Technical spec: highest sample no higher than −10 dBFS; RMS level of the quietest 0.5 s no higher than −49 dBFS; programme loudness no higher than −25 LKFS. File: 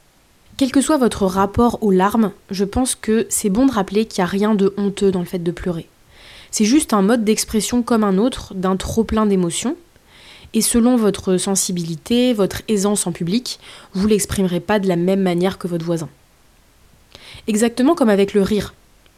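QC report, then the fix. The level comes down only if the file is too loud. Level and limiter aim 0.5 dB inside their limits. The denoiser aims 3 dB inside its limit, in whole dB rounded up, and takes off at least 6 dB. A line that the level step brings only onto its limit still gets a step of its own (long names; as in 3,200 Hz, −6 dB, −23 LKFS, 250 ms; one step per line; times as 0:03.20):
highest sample −4.5 dBFS: out of spec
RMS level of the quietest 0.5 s −53 dBFS: in spec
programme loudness −17.5 LKFS: out of spec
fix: level −8 dB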